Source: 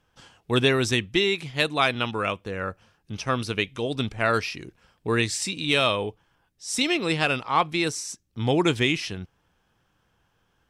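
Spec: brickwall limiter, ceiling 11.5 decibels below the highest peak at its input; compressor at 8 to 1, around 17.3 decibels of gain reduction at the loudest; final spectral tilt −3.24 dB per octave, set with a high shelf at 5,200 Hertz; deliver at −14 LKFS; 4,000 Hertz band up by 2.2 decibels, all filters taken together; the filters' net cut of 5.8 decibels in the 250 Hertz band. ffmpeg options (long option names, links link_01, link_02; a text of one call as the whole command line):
ffmpeg -i in.wav -af "equalizer=frequency=250:width_type=o:gain=-8.5,equalizer=frequency=4000:width_type=o:gain=5.5,highshelf=frequency=5200:gain=-7,acompressor=threshold=-35dB:ratio=8,volume=29dB,alimiter=limit=-3dB:level=0:latency=1" out.wav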